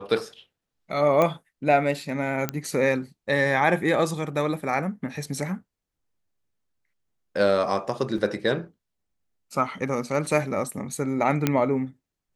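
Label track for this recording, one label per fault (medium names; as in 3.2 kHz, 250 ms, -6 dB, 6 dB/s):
1.220000	1.220000	pop -10 dBFS
2.490000	2.490000	pop -10 dBFS
8.180000	8.180000	dropout 2.7 ms
11.470000	11.470000	pop -7 dBFS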